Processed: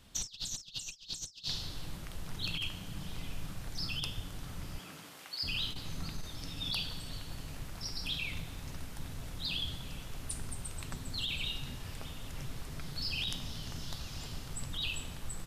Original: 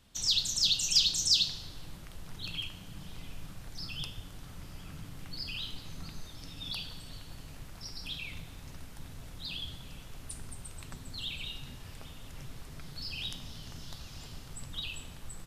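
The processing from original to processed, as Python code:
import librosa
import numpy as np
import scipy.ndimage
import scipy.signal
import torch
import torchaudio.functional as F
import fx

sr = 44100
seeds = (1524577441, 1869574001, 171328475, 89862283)

y = fx.highpass(x, sr, hz=fx.line((4.78, 200.0), (5.42, 830.0)), slope=12, at=(4.78, 5.42), fade=0.02)
y = fx.over_compress(y, sr, threshold_db=-37.0, ratio=-0.5)
y = F.gain(torch.from_numpy(y), 1.0).numpy()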